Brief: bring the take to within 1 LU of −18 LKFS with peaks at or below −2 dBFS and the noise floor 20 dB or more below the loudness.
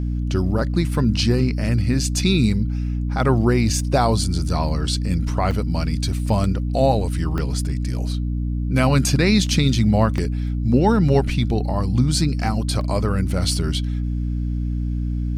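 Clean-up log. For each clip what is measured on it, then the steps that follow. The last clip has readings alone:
number of dropouts 5; longest dropout 1.5 ms; mains hum 60 Hz; hum harmonics up to 300 Hz; level of the hum −20 dBFS; integrated loudness −20.5 LKFS; sample peak −3.5 dBFS; target loudness −18.0 LKFS
→ repair the gap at 0:05.51/0:06.44/0:07.38/0:10.18/0:12.81, 1.5 ms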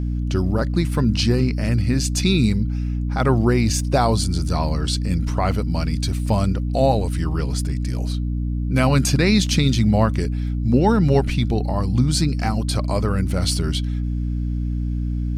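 number of dropouts 0; mains hum 60 Hz; hum harmonics up to 300 Hz; level of the hum −20 dBFS
→ hum removal 60 Hz, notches 5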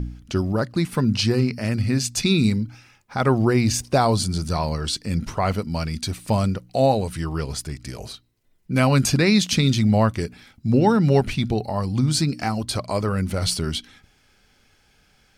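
mains hum none found; integrated loudness −22.0 LKFS; sample peak −5.0 dBFS; target loudness −18.0 LKFS
→ level +4 dB
brickwall limiter −2 dBFS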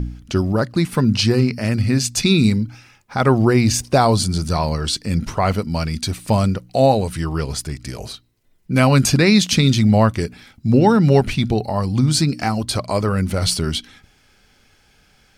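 integrated loudness −18.0 LKFS; sample peak −2.0 dBFS; background noise floor −56 dBFS

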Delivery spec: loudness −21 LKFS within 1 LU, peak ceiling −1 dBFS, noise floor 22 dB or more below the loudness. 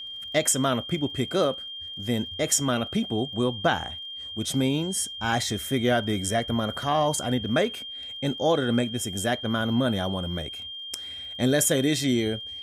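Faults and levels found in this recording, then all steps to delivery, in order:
crackle rate 34 per second; interfering tone 3,200 Hz; level of the tone −35 dBFS; integrated loudness −26.0 LKFS; sample peak −9.0 dBFS; target loudness −21.0 LKFS
→ click removal
notch filter 3,200 Hz, Q 30
level +5 dB

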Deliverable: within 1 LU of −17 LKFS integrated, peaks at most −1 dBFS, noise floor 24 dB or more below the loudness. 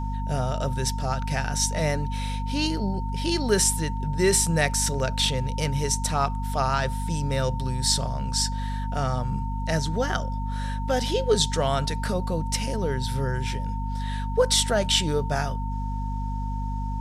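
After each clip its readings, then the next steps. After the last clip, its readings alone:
mains hum 50 Hz; hum harmonics up to 250 Hz; level of the hum −26 dBFS; interfering tone 910 Hz; level of the tone −35 dBFS; integrated loudness −25.5 LKFS; sample peak −8.5 dBFS; target loudness −17.0 LKFS
→ hum removal 50 Hz, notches 5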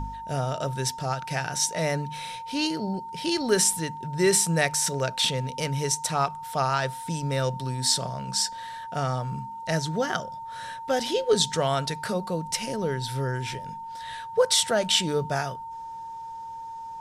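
mains hum none found; interfering tone 910 Hz; level of the tone −35 dBFS
→ notch filter 910 Hz, Q 30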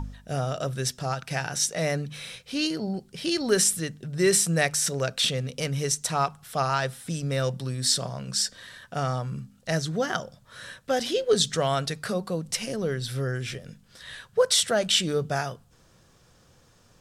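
interfering tone none found; integrated loudness −26.5 LKFS; sample peak −8.5 dBFS; target loudness −17.0 LKFS
→ level +9.5 dB
brickwall limiter −1 dBFS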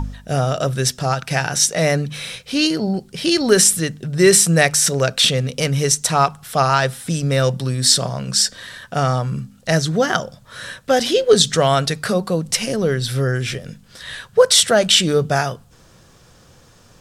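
integrated loudness −17.0 LKFS; sample peak −1.0 dBFS; background noise floor −49 dBFS

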